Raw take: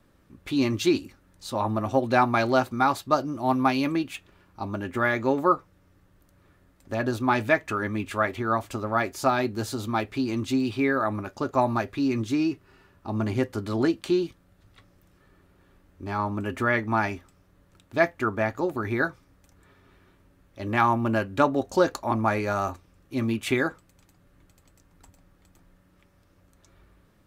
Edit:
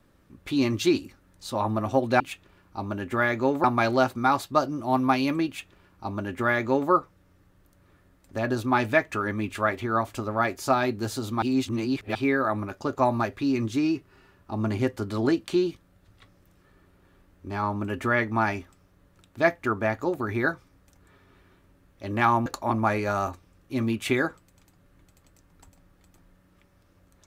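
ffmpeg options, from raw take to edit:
-filter_complex "[0:a]asplit=6[a][b][c][d][e][f];[a]atrim=end=2.202[g];[b]atrim=start=4.028:end=5.472[h];[c]atrim=start=2.198:end=9.982[i];[d]atrim=start=9.978:end=10.712,asetpts=PTS-STARTPTS,areverse[j];[e]atrim=start=10.708:end=21.022[k];[f]atrim=start=21.868[l];[g][h]acrossfade=d=0.004:c1=hsin:c2=hsin[m];[m][i]acrossfade=d=0.004:c1=hsin:c2=hsin[n];[n][j]acrossfade=d=0.004:c1=hsin:c2=hsin[o];[o][k]acrossfade=d=0.004:c1=hsin:c2=hsin[p];[p][l]acrossfade=d=0.004:c1=hsin:c2=hsin"

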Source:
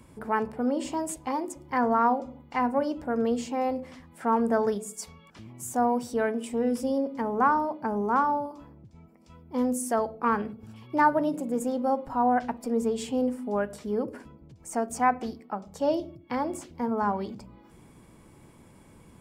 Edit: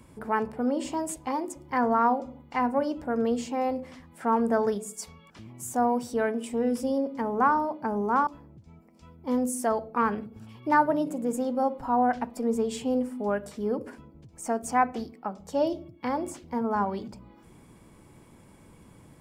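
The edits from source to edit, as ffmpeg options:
-filter_complex "[0:a]asplit=2[a][b];[a]atrim=end=8.272[c];[b]atrim=start=8.538[d];[c][d]acrossfade=d=0.004:c1=hsin:c2=hsin"

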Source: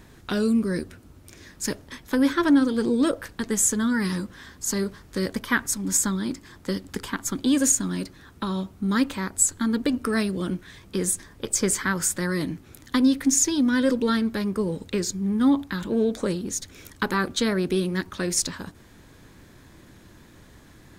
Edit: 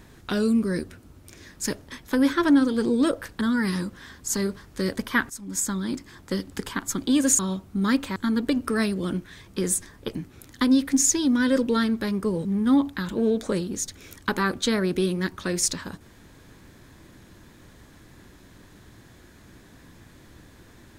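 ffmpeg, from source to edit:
-filter_complex "[0:a]asplit=7[a][b][c][d][e][f][g];[a]atrim=end=3.412[h];[b]atrim=start=3.778:end=5.67,asetpts=PTS-STARTPTS,afade=t=out:st=1.888:d=0.004:c=hsin:silence=0.211349[i];[c]atrim=start=5.67:end=7.762,asetpts=PTS-STARTPTS,afade=t=in:d=0.64:silence=0.211349[j];[d]atrim=start=8.458:end=9.232[k];[e]atrim=start=9.528:end=11.522[l];[f]atrim=start=12.478:end=14.782[m];[g]atrim=start=15.188[n];[i][j]concat=n=2:v=0:a=1[o];[h][o]acrossfade=d=0.004:c1=hsin:c2=hsin[p];[p][k]acrossfade=d=0.004:c1=hsin:c2=hsin[q];[q][l]acrossfade=d=0.004:c1=hsin:c2=hsin[r];[r][m]acrossfade=d=0.004:c1=hsin:c2=hsin[s];[s][n]acrossfade=d=0.004:c1=hsin:c2=hsin"

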